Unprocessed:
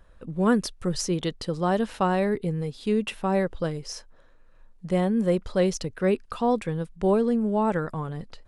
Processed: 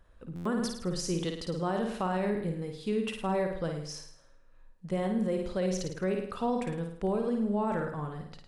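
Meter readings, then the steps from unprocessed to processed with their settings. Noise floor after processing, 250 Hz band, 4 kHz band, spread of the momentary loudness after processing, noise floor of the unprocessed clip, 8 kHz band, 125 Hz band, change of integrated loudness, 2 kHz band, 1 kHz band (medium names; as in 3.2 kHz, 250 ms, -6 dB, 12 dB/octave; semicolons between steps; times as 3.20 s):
-57 dBFS, -6.0 dB, -5.0 dB, 7 LU, -54 dBFS, -5.0 dB, -6.0 dB, -6.5 dB, -6.0 dB, -6.0 dB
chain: flutter echo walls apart 9.2 m, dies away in 0.61 s; peak limiter -15.5 dBFS, peak gain reduction 7.5 dB; buffer glitch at 0.35 s, samples 512, times 8; trim -6 dB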